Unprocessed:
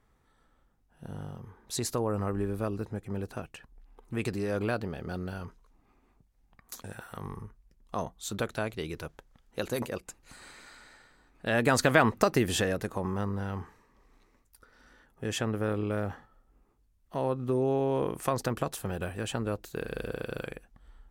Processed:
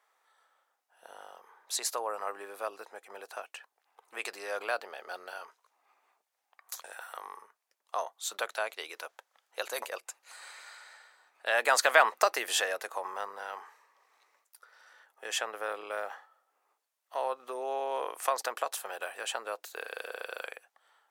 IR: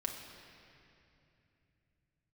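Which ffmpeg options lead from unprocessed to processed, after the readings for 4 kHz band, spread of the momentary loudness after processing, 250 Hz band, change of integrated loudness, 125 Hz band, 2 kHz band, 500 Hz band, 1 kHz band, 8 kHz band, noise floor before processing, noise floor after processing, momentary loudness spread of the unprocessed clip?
+2.5 dB, 19 LU, -23.0 dB, -1.5 dB, under -40 dB, +2.5 dB, -4.0 dB, +2.0 dB, +2.5 dB, -68 dBFS, -82 dBFS, 20 LU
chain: -af "highpass=f=610:w=0.5412,highpass=f=610:w=1.3066,volume=2.5dB"

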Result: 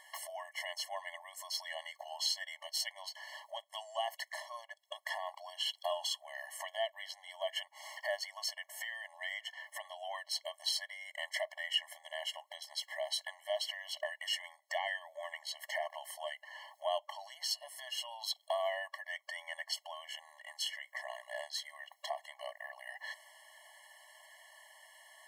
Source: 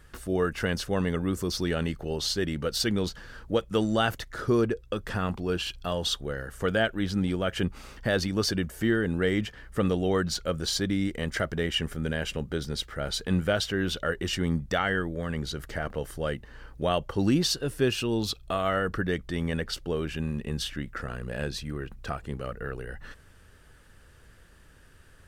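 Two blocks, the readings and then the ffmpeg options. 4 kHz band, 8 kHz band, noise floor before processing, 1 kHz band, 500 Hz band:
-5.0 dB, -6.5 dB, -54 dBFS, -7.5 dB, -13.0 dB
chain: -af "acompressor=threshold=-37dB:ratio=4,afftfilt=real='re*eq(mod(floor(b*sr/1024/560),2),1)':imag='im*eq(mod(floor(b*sr/1024/560),2),1)':win_size=1024:overlap=0.75,volume=7dB"

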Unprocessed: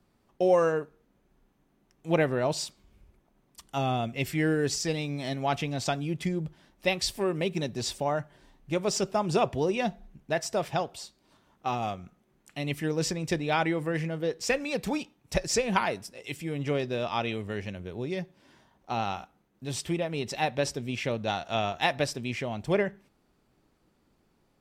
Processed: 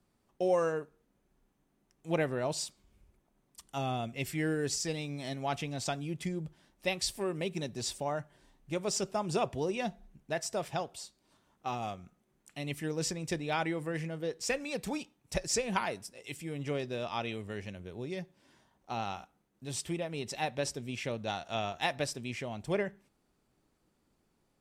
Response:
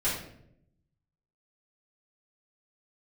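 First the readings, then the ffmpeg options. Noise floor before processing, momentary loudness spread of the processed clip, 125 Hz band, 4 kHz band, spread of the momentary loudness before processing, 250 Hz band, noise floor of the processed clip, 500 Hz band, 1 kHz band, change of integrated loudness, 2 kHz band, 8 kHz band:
-70 dBFS, 10 LU, -6.0 dB, -4.5 dB, 10 LU, -6.0 dB, -75 dBFS, -6.0 dB, -6.0 dB, -5.5 dB, -5.5 dB, -2.0 dB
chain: -af "equalizer=f=8.9k:t=o:w=1.1:g=6,volume=-6dB"

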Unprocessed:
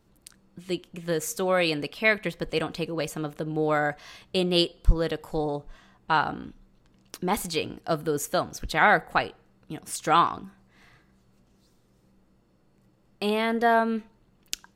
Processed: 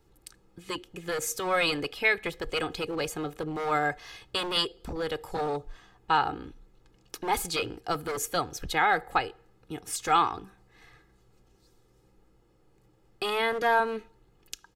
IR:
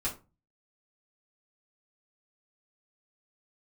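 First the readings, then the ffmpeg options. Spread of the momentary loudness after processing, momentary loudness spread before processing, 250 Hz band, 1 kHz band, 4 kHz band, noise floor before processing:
14 LU, 13 LU, -7.5 dB, -1.5 dB, -0.5 dB, -64 dBFS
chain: -filter_complex "[0:a]aecho=1:1:2.4:0.6,alimiter=limit=-11dB:level=0:latency=1:release=292,acrossover=split=550|2300[a][b][c];[a]aeval=exprs='0.0355*(abs(mod(val(0)/0.0355+3,4)-2)-1)':c=same[d];[d][b][c]amix=inputs=3:normalize=0,volume=-1dB"

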